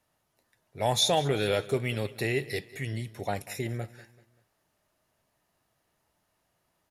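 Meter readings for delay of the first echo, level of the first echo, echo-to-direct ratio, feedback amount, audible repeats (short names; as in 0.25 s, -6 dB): 0.193 s, -19.0 dB, -18.0 dB, 41%, 3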